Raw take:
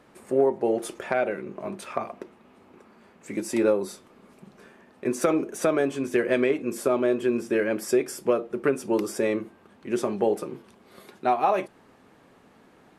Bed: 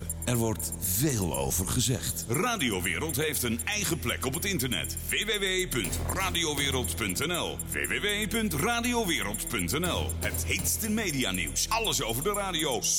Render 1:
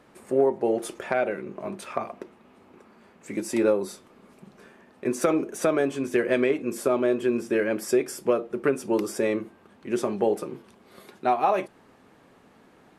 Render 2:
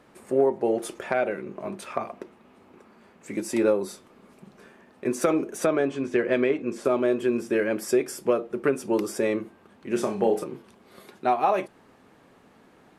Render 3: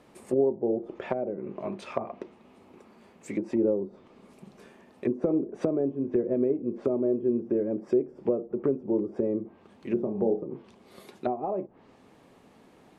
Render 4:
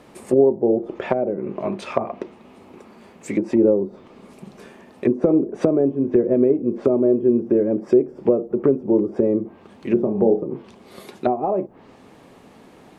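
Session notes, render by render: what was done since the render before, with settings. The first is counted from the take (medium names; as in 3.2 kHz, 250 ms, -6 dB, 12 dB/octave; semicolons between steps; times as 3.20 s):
no audible change
5.66–6.85 s: distance through air 82 m; 9.88–10.44 s: flutter echo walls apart 5.3 m, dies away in 0.28 s
low-pass that closes with the level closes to 440 Hz, closed at -23.5 dBFS; peaking EQ 1.5 kHz -6 dB 0.68 oct
trim +9 dB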